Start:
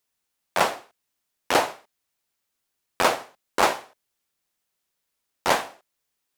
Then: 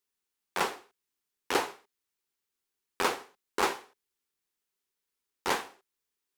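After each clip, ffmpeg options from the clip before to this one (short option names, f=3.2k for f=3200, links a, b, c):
-af "equalizer=f=125:t=o:w=0.33:g=-10,equalizer=f=400:t=o:w=0.33:g=7,equalizer=f=630:t=o:w=0.33:g=-11,volume=-7dB"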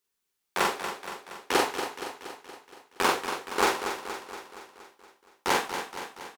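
-filter_complex "[0:a]asplit=2[a][b];[b]adelay=43,volume=-2.5dB[c];[a][c]amix=inputs=2:normalize=0,asplit=2[d][e];[e]aecho=0:1:235|470|705|940|1175|1410|1645:0.376|0.222|0.131|0.0772|0.0455|0.0269|0.0159[f];[d][f]amix=inputs=2:normalize=0,volume=2.5dB"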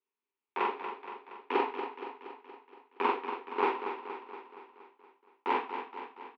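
-af "highpass=f=240:w=0.5412,highpass=f=240:w=1.3066,equalizer=f=250:t=q:w=4:g=9,equalizer=f=410:t=q:w=4:g=8,equalizer=f=600:t=q:w=4:g=-8,equalizer=f=950:t=q:w=4:g=10,equalizer=f=1.6k:t=q:w=4:g=-5,equalizer=f=2.5k:t=q:w=4:g=5,lowpass=f=2.8k:w=0.5412,lowpass=f=2.8k:w=1.3066,volume=-8.5dB"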